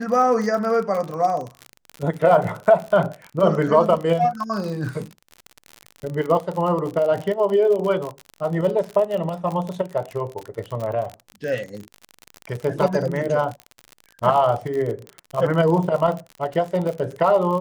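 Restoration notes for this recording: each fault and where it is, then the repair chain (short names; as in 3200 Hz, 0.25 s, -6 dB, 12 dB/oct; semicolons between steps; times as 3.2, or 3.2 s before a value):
crackle 46/s -26 dBFS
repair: de-click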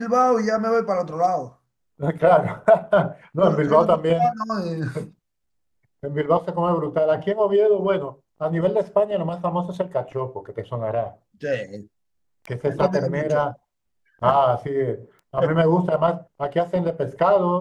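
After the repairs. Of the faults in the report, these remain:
none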